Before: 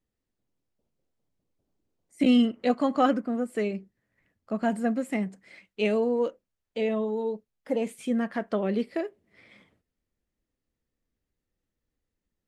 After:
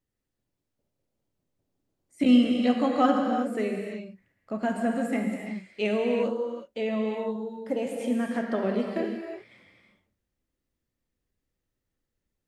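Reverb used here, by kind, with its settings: gated-style reverb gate 390 ms flat, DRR 1 dB; trim -1.5 dB

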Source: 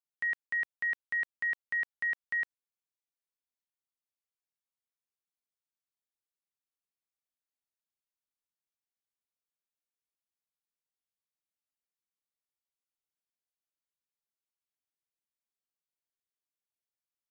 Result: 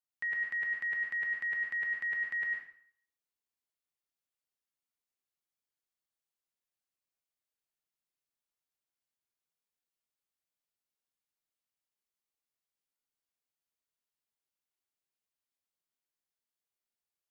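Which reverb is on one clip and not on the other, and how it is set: plate-style reverb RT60 0.58 s, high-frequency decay 0.9×, pre-delay 90 ms, DRR -1.5 dB; trim -3.5 dB

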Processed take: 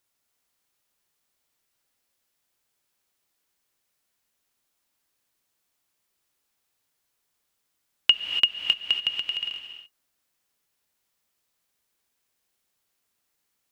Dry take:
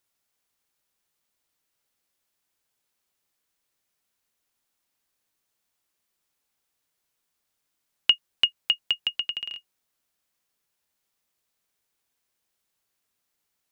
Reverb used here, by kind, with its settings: gated-style reverb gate 310 ms rising, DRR 5 dB; trim +1 dB

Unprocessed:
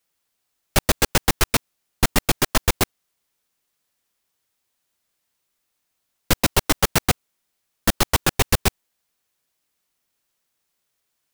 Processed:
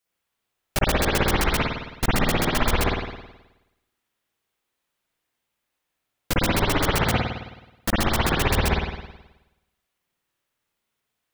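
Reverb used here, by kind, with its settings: spring tank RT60 1 s, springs 53 ms, chirp 45 ms, DRR -6.5 dB; trim -7 dB

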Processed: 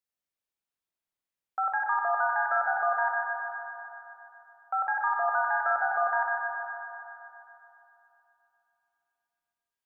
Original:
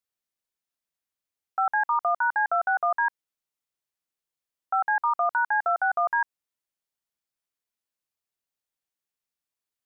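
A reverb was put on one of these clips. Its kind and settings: spring tank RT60 3.1 s, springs 47/59 ms, chirp 55 ms, DRR -1 dB; trim -4.5 dB

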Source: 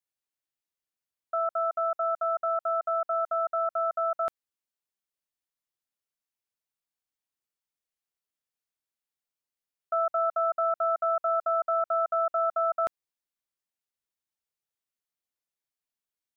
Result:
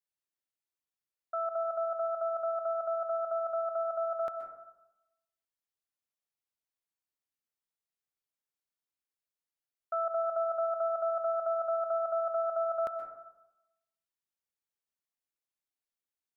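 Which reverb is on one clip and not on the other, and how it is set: plate-style reverb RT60 0.94 s, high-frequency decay 0.25×, pre-delay 115 ms, DRR 6 dB; trim -5.5 dB

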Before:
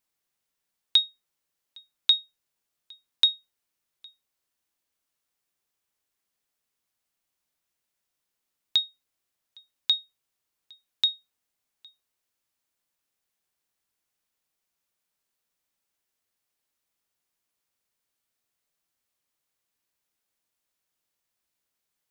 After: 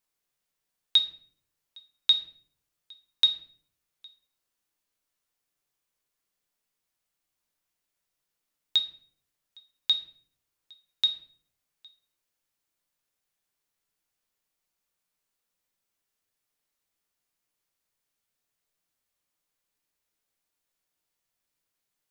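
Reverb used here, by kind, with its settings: simulated room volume 69 m³, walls mixed, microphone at 0.43 m; trim -2 dB

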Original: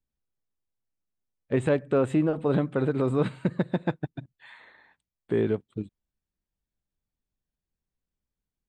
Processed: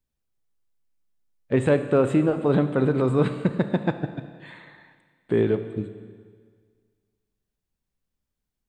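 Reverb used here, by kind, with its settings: Schroeder reverb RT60 1.8 s, combs from 27 ms, DRR 9.5 dB; trim +3.5 dB

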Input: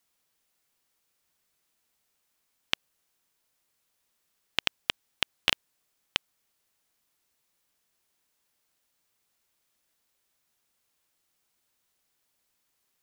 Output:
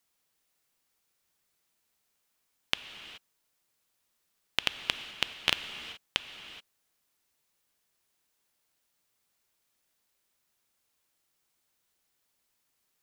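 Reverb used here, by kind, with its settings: gated-style reverb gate 450 ms flat, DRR 9 dB; trim -1.5 dB

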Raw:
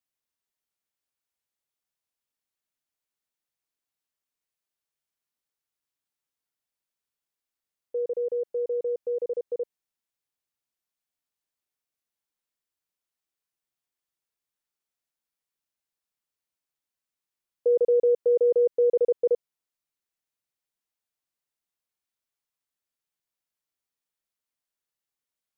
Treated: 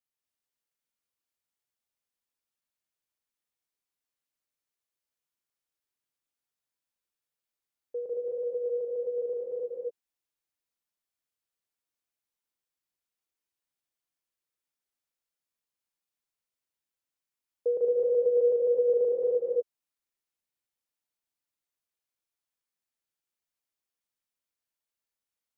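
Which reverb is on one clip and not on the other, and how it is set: gated-style reverb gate 280 ms rising, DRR -1 dB; trim -5.5 dB

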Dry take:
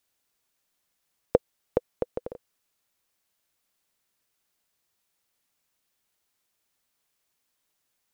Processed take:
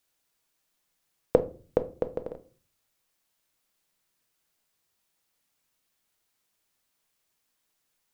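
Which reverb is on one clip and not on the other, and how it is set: simulated room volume 240 m³, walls furnished, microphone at 0.6 m

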